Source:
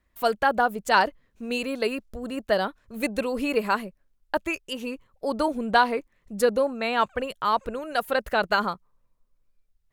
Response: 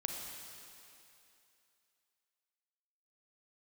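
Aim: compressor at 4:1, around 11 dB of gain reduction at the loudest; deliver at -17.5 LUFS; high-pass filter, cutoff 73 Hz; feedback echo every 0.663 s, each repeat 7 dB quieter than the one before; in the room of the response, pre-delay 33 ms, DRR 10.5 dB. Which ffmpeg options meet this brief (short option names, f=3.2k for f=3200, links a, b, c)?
-filter_complex "[0:a]highpass=73,acompressor=threshold=-28dB:ratio=4,aecho=1:1:663|1326|1989|2652|3315:0.447|0.201|0.0905|0.0407|0.0183,asplit=2[a][b];[1:a]atrim=start_sample=2205,adelay=33[c];[b][c]afir=irnorm=-1:irlink=0,volume=-12dB[d];[a][d]amix=inputs=2:normalize=0,volume=14.5dB"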